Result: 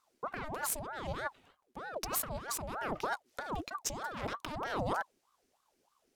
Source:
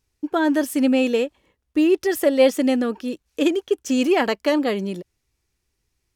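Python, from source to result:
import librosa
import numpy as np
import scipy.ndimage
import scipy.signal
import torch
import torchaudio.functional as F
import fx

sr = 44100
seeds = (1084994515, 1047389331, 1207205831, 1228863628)

y = fx.cheby_harmonics(x, sr, harmonics=(6,), levels_db=(-16,), full_scale_db=-5.5)
y = fx.over_compress(y, sr, threshold_db=-28.0, ratio=-1.0)
y = fx.ring_lfo(y, sr, carrier_hz=740.0, swing_pct=60, hz=3.2)
y = F.gain(torch.from_numpy(y), -7.5).numpy()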